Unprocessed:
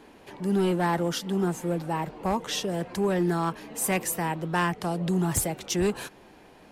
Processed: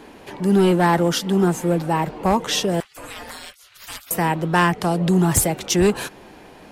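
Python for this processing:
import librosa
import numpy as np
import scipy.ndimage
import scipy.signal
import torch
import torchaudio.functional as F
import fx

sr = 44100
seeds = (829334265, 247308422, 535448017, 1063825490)

y = fx.spec_gate(x, sr, threshold_db=-25, keep='weak', at=(2.8, 4.11))
y = F.gain(torch.from_numpy(y), 8.5).numpy()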